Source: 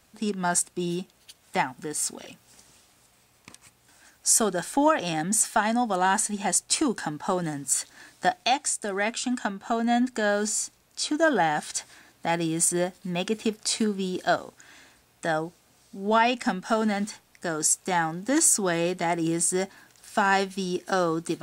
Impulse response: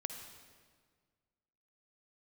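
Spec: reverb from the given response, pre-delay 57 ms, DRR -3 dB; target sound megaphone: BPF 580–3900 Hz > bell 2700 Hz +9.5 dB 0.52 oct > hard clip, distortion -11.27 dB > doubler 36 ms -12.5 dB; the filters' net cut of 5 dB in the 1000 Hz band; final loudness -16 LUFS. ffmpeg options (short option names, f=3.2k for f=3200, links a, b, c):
-filter_complex "[0:a]equalizer=f=1k:t=o:g=-6,asplit=2[a][b];[1:a]atrim=start_sample=2205,adelay=57[c];[b][c]afir=irnorm=-1:irlink=0,volume=4dB[d];[a][d]amix=inputs=2:normalize=0,highpass=580,lowpass=3.9k,equalizer=f=2.7k:t=o:w=0.52:g=9.5,asoftclip=type=hard:threshold=-20.5dB,asplit=2[e][f];[f]adelay=36,volume=-12.5dB[g];[e][g]amix=inputs=2:normalize=0,volume=11dB"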